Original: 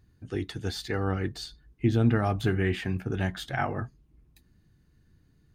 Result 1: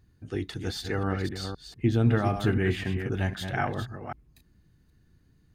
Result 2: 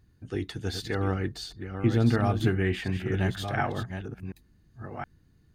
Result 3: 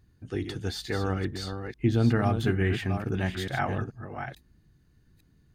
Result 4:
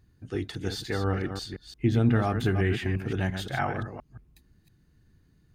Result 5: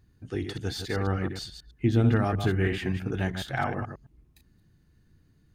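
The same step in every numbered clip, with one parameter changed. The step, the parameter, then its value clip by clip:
delay that plays each chunk backwards, delay time: 258, 720, 435, 174, 107 milliseconds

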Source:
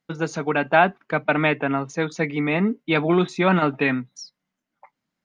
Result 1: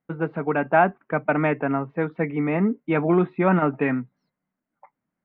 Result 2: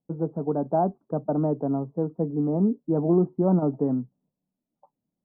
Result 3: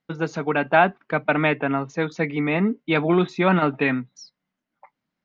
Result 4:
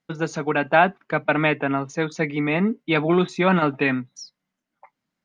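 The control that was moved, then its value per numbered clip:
Bessel low-pass filter, frequency: 1,500, 510, 4,400, 12,000 Hertz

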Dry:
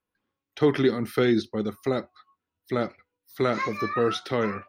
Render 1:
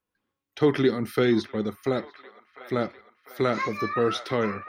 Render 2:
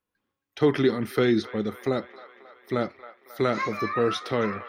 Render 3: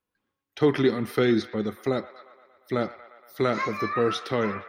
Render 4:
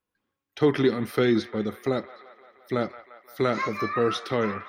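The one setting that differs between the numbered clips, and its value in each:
delay with a band-pass on its return, delay time: 699, 270, 117, 173 milliseconds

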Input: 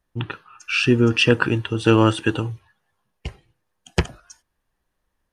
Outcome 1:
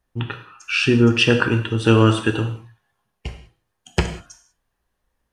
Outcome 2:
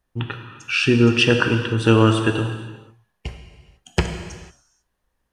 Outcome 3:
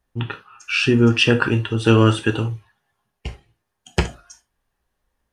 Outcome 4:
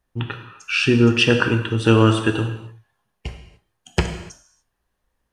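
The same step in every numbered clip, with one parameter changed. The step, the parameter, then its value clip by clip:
reverb whose tail is shaped and stops, gate: 220, 520, 100, 320 milliseconds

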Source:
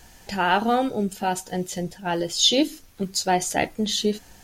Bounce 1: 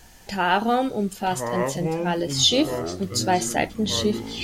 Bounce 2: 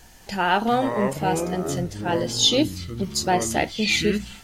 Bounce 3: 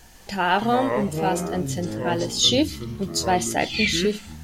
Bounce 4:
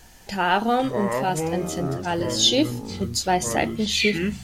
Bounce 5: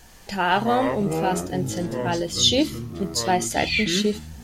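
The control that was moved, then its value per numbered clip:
delay with pitch and tempo change per echo, delay time: 828, 236, 152, 359, 83 milliseconds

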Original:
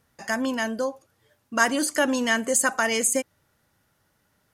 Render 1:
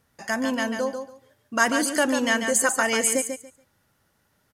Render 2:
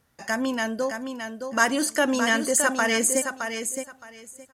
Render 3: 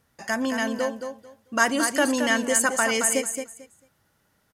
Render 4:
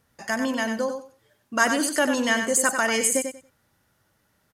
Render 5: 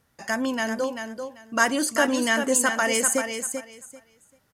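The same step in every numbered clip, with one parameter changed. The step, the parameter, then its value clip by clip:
repeating echo, delay time: 142, 617, 222, 94, 390 milliseconds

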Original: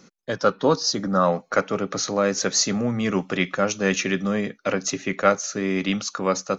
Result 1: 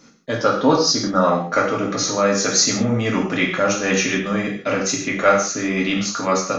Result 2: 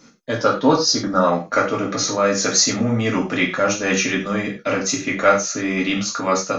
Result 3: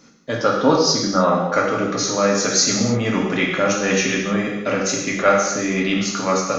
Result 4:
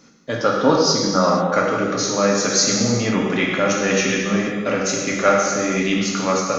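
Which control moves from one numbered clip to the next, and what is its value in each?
reverb whose tail is shaped and stops, gate: 200, 130, 340, 520 milliseconds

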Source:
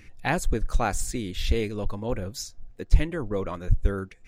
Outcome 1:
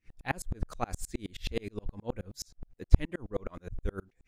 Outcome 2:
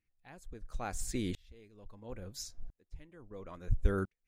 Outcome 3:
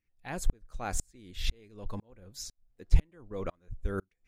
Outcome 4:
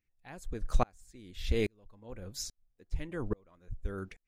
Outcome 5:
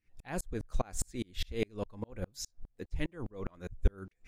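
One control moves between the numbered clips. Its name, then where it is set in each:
tremolo with a ramp in dB, speed: 9.5, 0.74, 2, 1.2, 4.9 Hertz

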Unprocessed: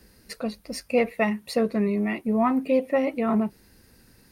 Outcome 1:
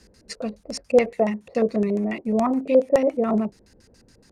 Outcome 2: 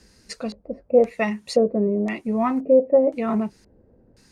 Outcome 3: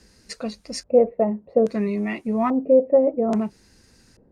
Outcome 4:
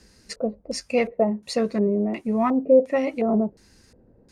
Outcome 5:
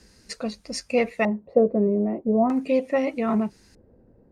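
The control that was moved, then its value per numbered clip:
auto-filter low-pass, speed: 7.1, 0.96, 0.6, 1.4, 0.4 Hertz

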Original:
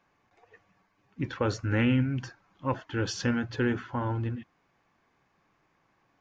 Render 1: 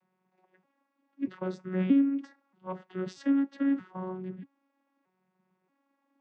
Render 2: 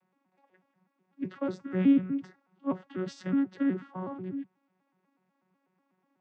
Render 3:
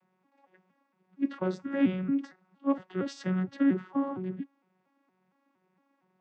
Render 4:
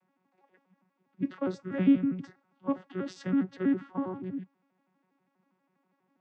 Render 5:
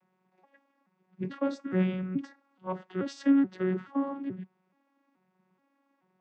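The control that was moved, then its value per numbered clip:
vocoder with an arpeggio as carrier, a note every: 631, 123, 231, 81, 429 milliseconds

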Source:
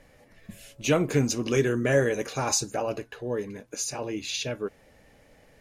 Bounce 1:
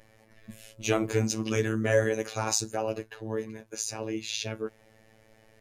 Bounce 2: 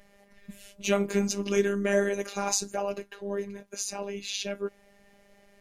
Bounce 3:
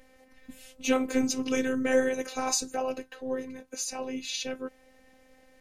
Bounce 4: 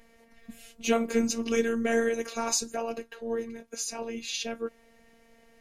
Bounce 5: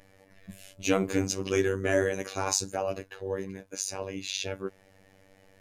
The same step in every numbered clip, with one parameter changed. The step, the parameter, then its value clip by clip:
phases set to zero, frequency: 110, 200, 260, 230, 96 Hertz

